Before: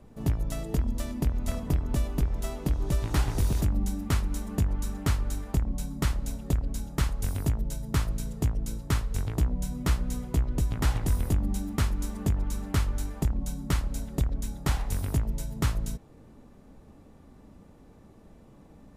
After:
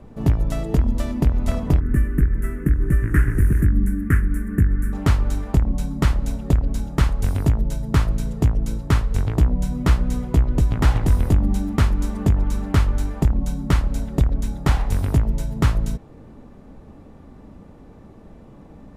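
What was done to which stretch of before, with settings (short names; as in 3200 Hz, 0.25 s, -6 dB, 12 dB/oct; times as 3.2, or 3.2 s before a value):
1.8–4.93 EQ curve 360 Hz 0 dB, 800 Hz -25 dB, 1700 Hz +9 dB, 4000 Hz -30 dB, 9900 Hz +2 dB
whole clip: high shelf 4300 Hz -11 dB; gain +9 dB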